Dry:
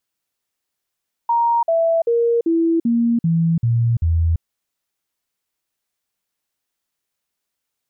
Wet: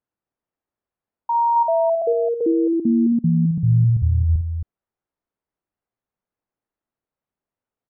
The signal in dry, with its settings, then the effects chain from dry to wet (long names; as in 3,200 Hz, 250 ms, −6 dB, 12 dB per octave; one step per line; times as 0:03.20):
stepped sweep 936 Hz down, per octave 2, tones 8, 0.34 s, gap 0.05 s −13.5 dBFS
Bessel low-pass filter 900 Hz, order 2
on a send: loudspeakers that aren't time-aligned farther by 18 metres −9 dB, 92 metres −8 dB